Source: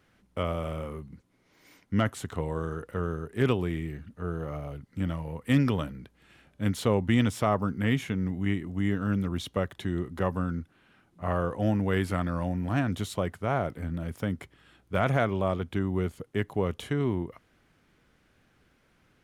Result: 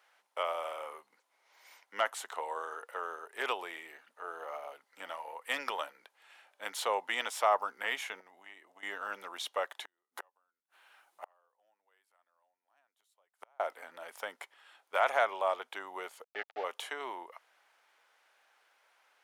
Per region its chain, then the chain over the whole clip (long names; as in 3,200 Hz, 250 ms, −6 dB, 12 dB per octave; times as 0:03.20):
0:08.20–0:08.83: downward expander −31 dBFS + notch filter 1,400 Hz, Q 20 + downward compressor 12 to 1, threshold −35 dBFS
0:09.85–0:13.60: high-shelf EQ 8,000 Hz +10.5 dB + gate with flip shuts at −25 dBFS, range −40 dB
0:16.24–0:16.64: centre clipping without the shift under −34 dBFS + Butterworth band-reject 1,000 Hz, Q 3.1 + high-frequency loss of the air 300 metres
whole clip: high-pass filter 610 Hz 24 dB per octave; parametric band 880 Hz +5.5 dB 0.36 octaves